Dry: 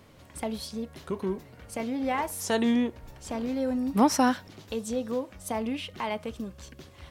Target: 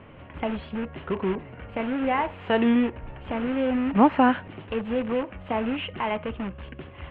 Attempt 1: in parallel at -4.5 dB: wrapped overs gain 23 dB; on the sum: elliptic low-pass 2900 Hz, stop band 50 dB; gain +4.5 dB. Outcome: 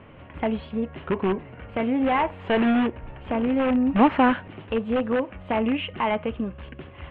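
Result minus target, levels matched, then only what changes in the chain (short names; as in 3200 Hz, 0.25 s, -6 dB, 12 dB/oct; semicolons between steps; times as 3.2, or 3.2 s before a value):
wrapped overs: distortion -18 dB
change: wrapped overs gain 32 dB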